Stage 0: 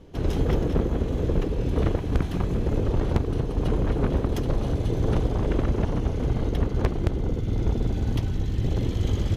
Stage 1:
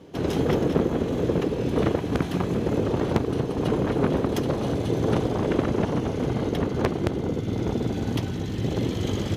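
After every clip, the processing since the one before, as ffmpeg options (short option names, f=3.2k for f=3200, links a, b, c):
-af "highpass=150,volume=4.5dB"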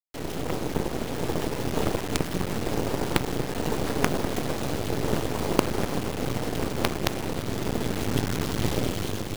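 -af "aeval=exprs='0.562*(cos(1*acos(clip(val(0)/0.562,-1,1)))-cos(1*PI/2))+0.0562*(cos(3*acos(clip(val(0)/0.562,-1,1)))-cos(3*PI/2))':c=same,acrusher=bits=3:dc=4:mix=0:aa=0.000001,dynaudnorm=f=240:g=9:m=13dB,volume=-1dB"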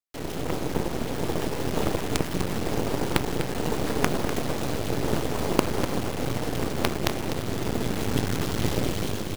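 -af "aecho=1:1:248:0.316"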